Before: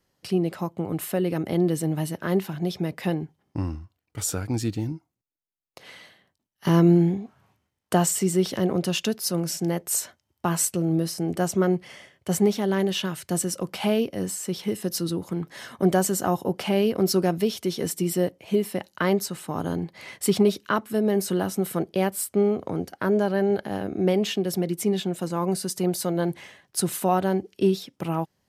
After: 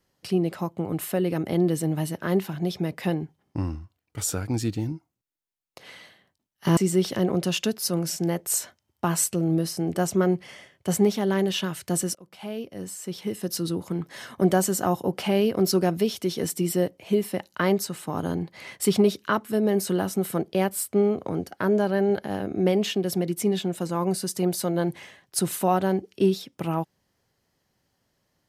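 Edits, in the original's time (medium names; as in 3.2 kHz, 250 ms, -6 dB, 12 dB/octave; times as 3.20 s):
6.77–8.18 s: delete
13.56–15.18 s: fade in, from -23.5 dB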